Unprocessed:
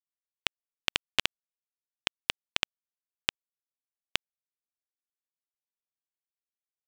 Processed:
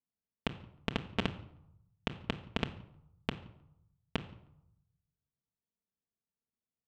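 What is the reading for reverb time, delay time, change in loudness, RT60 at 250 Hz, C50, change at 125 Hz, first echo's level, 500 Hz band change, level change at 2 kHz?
0.80 s, no echo, -7.0 dB, 0.85 s, 14.5 dB, +12.0 dB, no echo, +4.5 dB, -9.0 dB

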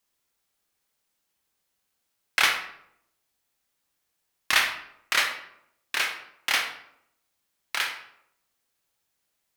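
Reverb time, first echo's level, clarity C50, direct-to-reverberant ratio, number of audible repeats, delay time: 0.75 s, no echo, 7.5 dB, 3.5 dB, no echo, no echo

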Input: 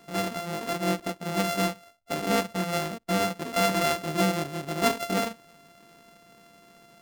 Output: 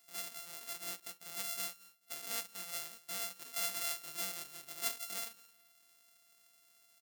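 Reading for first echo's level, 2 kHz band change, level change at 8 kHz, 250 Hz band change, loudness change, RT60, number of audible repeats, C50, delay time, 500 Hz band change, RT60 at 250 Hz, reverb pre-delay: -21.5 dB, -15.0 dB, -4.0 dB, -31.5 dB, -12.0 dB, no reverb, 1, no reverb, 217 ms, -25.5 dB, no reverb, no reverb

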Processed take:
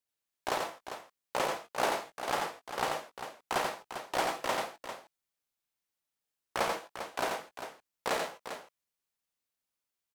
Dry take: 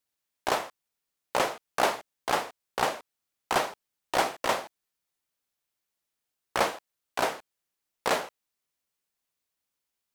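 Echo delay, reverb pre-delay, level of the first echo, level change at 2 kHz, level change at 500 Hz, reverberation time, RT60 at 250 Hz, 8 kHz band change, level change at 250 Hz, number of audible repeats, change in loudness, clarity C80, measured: 87 ms, no reverb, -4.5 dB, -4.0 dB, -4.0 dB, no reverb, no reverb, -4.0 dB, -4.0 dB, 2, -5.0 dB, no reverb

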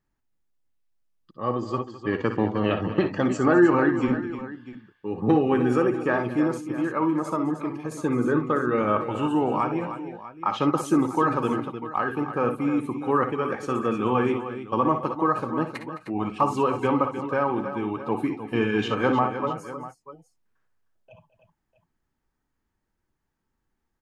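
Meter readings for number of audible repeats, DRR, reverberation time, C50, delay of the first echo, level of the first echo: 4, no reverb, no reverb, no reverb, 57 ms, -11.0 dB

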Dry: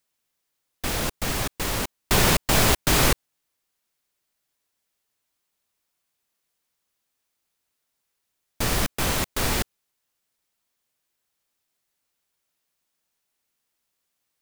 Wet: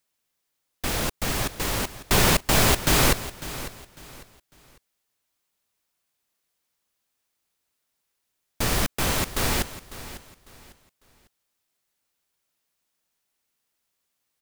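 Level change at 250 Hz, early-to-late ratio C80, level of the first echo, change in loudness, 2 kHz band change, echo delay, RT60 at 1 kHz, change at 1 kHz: 0.0 dB, no reverb, -15.0 dB, -0.5 dB, 0.0 dB, 550 ms, no reverb, 0.0 dB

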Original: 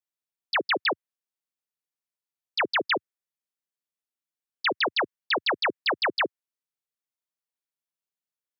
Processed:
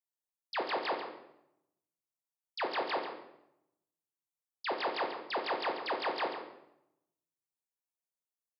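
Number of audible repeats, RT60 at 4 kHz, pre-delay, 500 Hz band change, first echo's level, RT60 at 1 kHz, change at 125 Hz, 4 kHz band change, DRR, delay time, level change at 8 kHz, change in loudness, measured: 1, 0.60 s, 8 ms, -5.0 dB, -10.5 dB, 0.75 s, no reading, -12.0 dB, 1.0 dB, 140 ms, no reading, -9.5 dB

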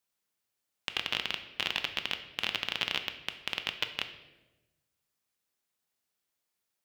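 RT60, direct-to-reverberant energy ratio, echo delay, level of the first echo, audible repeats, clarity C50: 1.1 s, 7.0 dB, no echo, no echo, no echo, 10.5 dB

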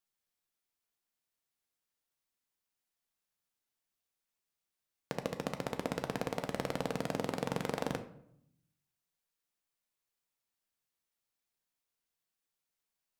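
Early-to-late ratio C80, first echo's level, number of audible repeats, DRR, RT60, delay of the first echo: 15.5 dB, no echo, no echo, 7.0 dB, 0.70 s, no echo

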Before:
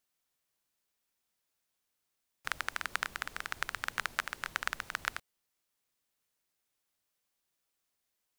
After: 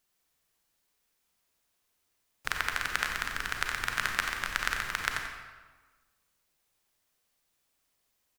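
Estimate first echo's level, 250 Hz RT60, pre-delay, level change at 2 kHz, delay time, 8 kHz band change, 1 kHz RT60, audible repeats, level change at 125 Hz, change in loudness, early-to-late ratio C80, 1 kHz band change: -9.0 dB, 1.6 s, 31 ms, +5.5 dB, 90 ms, +6.0 dB, 1.4 s, 1, +9.5 dB, +5.5 dB, 4.0 dB, +4.5 dB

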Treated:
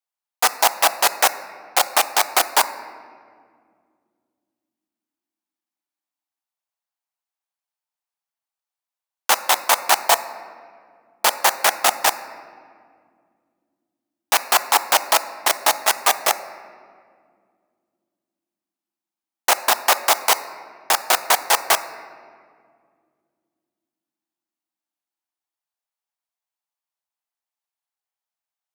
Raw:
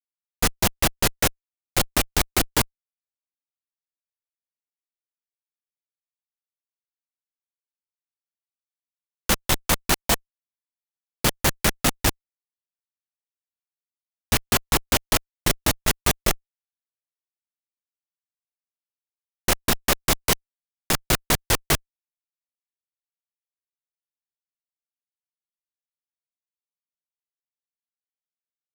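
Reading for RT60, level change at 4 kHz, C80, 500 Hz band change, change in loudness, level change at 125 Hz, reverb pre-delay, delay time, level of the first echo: 2.1 s, +4.0 dB, 14.5 dB, +3.5 dB, +4.5 dB, under -25 dB, 3 ms, no echo, no echo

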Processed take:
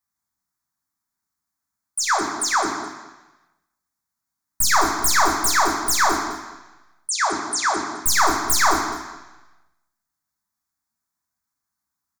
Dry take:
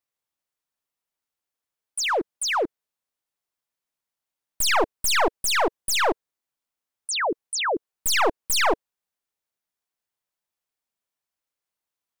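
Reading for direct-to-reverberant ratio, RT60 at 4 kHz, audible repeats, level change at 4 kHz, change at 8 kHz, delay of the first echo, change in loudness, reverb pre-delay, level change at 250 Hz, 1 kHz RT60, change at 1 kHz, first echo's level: 1.5 dB, 1.2 s, 1, +0.5 dB, +6.0 dB, 212 ms, +3.5 dB, 3 ms, +4.5 dB, 1.1 s, +6.0 dB, -15.0 dB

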